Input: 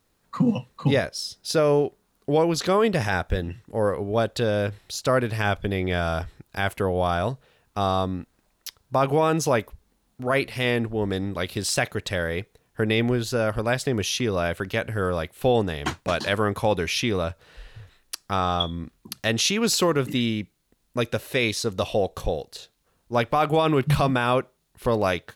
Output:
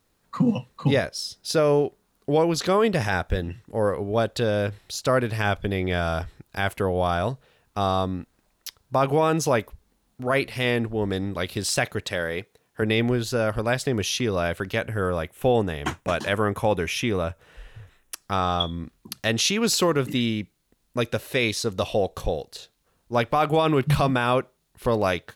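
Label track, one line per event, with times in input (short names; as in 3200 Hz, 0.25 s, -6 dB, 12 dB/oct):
12.040000	12.820000	HPF 190 Hz 6 dB/oct
14.850000	18.220000	bell 4400 Hz -10 dB 0.48 oct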